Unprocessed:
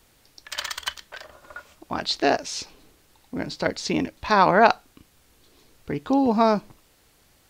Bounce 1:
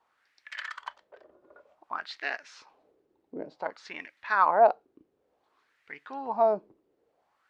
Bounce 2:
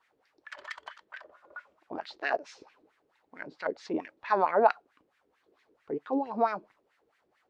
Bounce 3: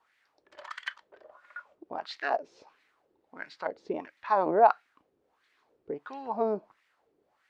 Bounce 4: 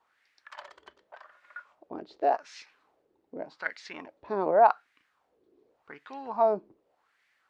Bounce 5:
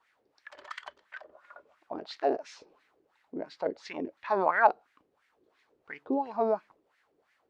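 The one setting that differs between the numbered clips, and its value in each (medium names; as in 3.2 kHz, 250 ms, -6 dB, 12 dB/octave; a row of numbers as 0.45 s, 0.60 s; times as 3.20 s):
wah-wah, rate: 0.55 Hz, 4.5 Hz, 1.5 Hz, 0.86 Hz, 2.9 Hz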